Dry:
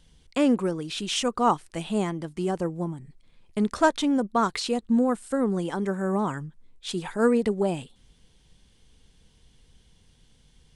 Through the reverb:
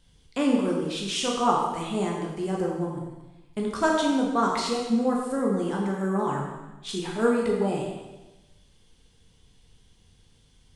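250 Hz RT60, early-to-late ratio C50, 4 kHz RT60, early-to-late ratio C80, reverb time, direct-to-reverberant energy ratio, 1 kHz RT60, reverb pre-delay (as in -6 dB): 1.1 s, 1.5 dB, 1.0 s, 4.0 dB, 1.1 s, -2.0 dB, 1.1 s, 6 ms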